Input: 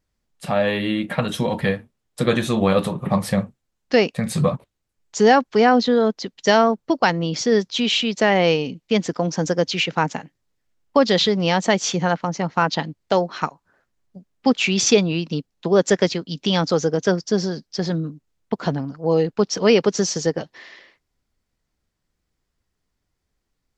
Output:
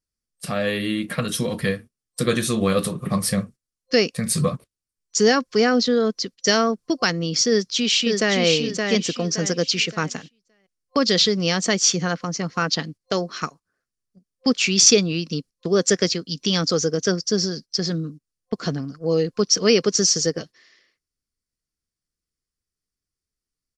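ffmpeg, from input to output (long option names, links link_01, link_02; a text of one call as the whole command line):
ffmpeg -i in.wav -filter_complex "[0:a]asplit=2[link_01][link_02];[link_02]afade=type=in:start_time=7.49:duration=0.01,afade=type=out:start_time=8.38:duration=0.01,aecho=0:1:570|1140|1710|2280:0.630957|0.220835|0.0772923|0.0270523[link_03];[link_01][link_03]amix=inputs=2:normalize=0,equalizer=frequency=7000:width_type=o:width=0.98:gain=8.5,agate=range=-12dB:threshold=-36dB:ratio=16:detection=peak,superequalizer=8b=0.562:9b=0.316:14b=1.78:16b=2.82,volume=-2dB" out.wav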